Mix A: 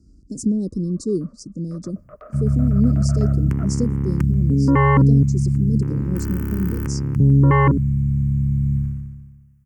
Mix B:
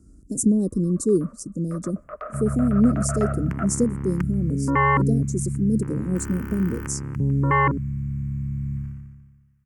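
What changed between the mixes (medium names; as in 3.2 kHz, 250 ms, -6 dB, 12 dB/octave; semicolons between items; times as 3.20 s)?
speech: remove resonant low-pass 4.8 kHz, resonance Q 4.2; second sound -9.0 dB; master: add peaking EQ 1.6 kHz +10.5 dB 2.9 oct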